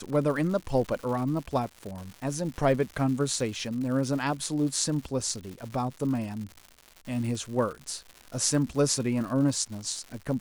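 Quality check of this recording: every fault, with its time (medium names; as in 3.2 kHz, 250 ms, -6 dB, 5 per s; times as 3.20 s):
crackle 220 per s -36 dBFS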